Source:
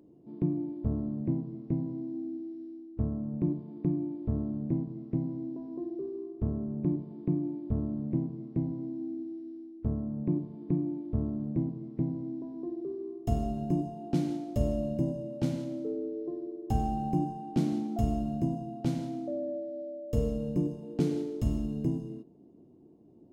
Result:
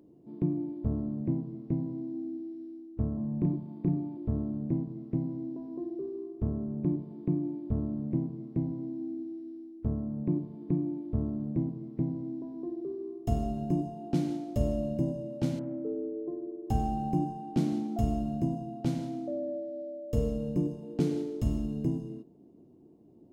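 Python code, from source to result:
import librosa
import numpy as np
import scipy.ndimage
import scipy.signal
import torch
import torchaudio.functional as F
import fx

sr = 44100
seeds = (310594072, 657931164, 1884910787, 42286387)

y = fx.doubler(x, sr, ms=33.0, db=-3, at=(3.14, 4.17))
y = fx.lowpass(y, sr, hz=1700.0, slope=24, at=(15.59, 16.67))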